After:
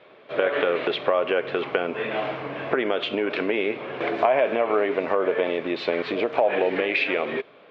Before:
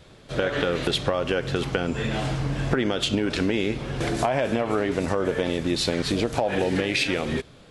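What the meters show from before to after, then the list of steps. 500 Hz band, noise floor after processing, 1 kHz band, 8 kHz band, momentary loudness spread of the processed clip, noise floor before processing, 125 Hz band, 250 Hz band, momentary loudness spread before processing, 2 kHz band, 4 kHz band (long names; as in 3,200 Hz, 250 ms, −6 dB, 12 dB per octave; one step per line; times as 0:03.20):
+3.5 dB, −51 dBFS, +3.0 dB, below −25 dB, 7 LU, −49 dBFS, −15.5 dB, −4.5 dB, 4 LU, +2.0 dB, −4.5 dB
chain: loudspeaker in its box 350–3,100 Hz, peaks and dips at 420 Hz +5 dB, 630 Hz +6 dB, 1,100 Hz +5 dB, 2,300 Hz +5 dB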